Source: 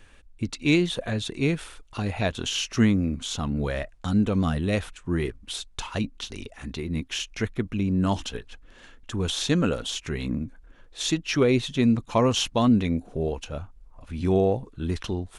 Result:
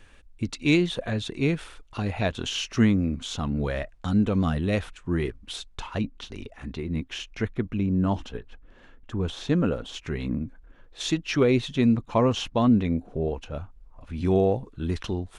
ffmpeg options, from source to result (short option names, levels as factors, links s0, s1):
-af "asetnsamples=n=441:p=0,asendcmd='0.77 lowpass f 4600;5.75 lowpass f 2200;7.86 lowpass f 1200;9.94 lowpass f 2500;11 lowpass f 4300;11.96 lowpass f 2000;13.54 lowpass f 3800;14.18 lowpass f 6200',lowpass=f=10000:p=1"